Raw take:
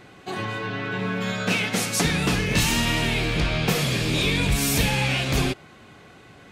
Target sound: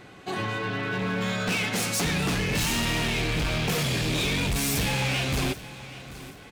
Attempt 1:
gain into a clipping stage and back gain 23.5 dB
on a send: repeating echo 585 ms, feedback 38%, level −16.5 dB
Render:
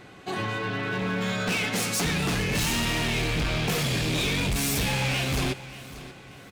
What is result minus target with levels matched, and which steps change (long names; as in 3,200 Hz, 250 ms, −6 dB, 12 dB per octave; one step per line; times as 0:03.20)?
echo 194 ms early
change: repeating echo 779 ms, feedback 38%, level −16.5 dB